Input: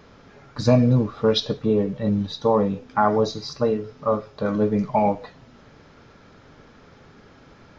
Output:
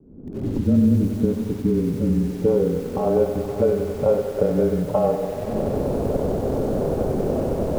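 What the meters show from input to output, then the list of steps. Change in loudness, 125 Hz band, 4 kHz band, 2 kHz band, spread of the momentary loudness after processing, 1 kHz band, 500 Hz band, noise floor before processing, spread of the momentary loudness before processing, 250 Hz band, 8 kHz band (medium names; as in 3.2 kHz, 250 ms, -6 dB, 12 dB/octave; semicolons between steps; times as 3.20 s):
+0.5 dB, +1.5 dB, under -10 dB, -6.0 dB, 5 LU, -5.5 dB, +3.0 dB, -51 dBFS, 7 LU, +3.0 dB, no reading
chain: recorder AGC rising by 60 dB/s; inverse Chebyshev low-pass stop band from 2.5 kHz, stop band 50 dB; peaking EQ 140 Hz -2 dB 0.72 oct; frequency shift -21 Hz; sample-and-hold 23×; low-pass sweep 290 Hz -> 590 Hz, 1.85–3.30 s; on a send: echo that smears into a reverb 513 ms, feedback 41%, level -13 dB; on the sum: bit-crushed delay 94 ms, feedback 80%, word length 6-bit, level -9.5 dB; trim -3 dB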